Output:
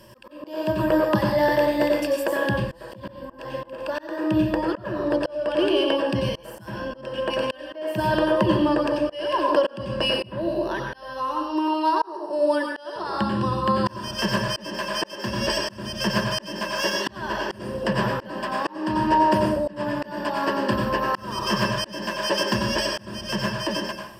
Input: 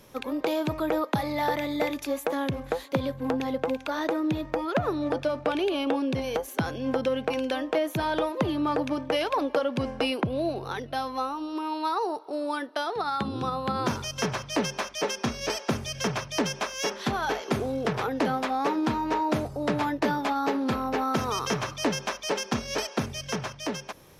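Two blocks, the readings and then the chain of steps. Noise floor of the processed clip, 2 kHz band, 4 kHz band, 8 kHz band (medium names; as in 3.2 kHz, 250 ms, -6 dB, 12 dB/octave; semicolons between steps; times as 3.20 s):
-44 dBFS, +5.0 dB, +5.5 dB, -1.5 dB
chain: rippled EQ curve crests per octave 1.3, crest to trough 15 dB; plate-style reverb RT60 0.63 s, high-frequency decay 0.75×, pre-delay 80 ms, DRR 1 dB; slow attack 416 ms; trim +1.5 dB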